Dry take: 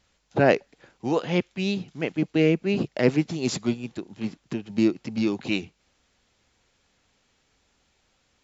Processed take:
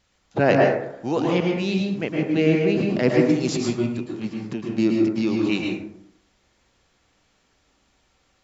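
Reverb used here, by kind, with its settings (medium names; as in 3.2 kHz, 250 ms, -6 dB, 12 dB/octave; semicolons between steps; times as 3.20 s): plate-style reverb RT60 0.78 s, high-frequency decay 0.4×, pre-delay 100 ms, DRR -1 dB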